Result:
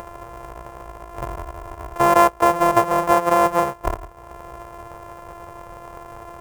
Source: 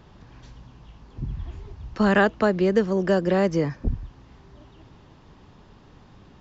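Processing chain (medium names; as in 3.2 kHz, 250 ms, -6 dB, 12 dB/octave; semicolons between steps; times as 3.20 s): sorted samples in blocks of 128 samples; graphic EQ 250/500/1000/4000 Hz -12/+10/+12/-10 dB; upward compressor, threshold -25 dBFS; trim -1.5 dB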